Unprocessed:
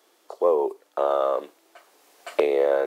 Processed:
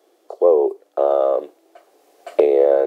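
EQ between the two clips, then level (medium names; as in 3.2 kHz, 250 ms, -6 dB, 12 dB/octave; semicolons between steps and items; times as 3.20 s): bass shelf 320 Hz +6 dB; high-order bell 520 Hz +9 dB; band-stop 900 Hz, Q 9.8; -4.0 dB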